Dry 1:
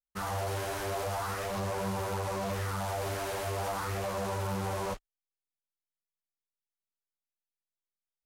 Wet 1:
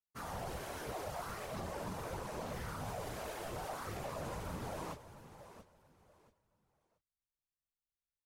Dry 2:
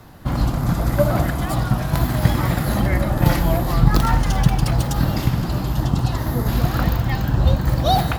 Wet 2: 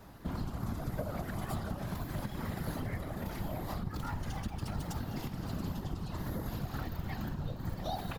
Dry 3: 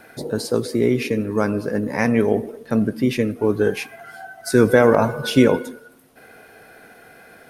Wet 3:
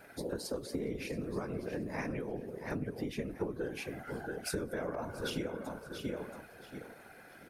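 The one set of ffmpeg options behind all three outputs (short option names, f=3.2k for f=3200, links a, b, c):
-af "aecho=1:1:679|1358|2037:0.224|0.056|0.014,acompressor=threshold=-24dB:ratio=12,afftfilt=real='hypot(re,im)*cos(2*PI*random(0))':imag='hypot(re,im)*sin(2*PI*random(1))':win_size=512:overlap=0.75,volume=-3dB"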